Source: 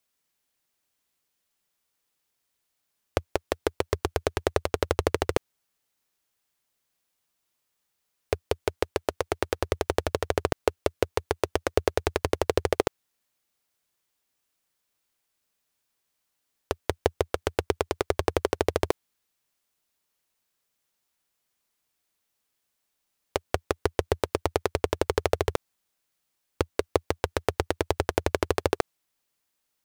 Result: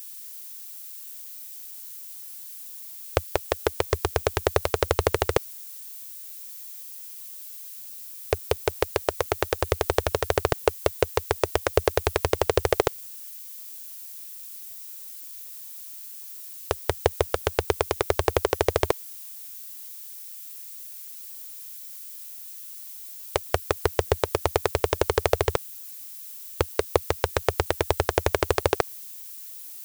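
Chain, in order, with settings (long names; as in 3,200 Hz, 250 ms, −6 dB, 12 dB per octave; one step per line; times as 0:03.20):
parametric band 270 Hz −13 dB 0.39 octaves
background noise violet −44 dBFS
level +3.5 dB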